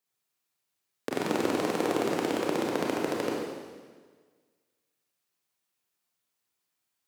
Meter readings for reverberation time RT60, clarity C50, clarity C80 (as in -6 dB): 1.5 s, -0.5 dB, 2.0 dB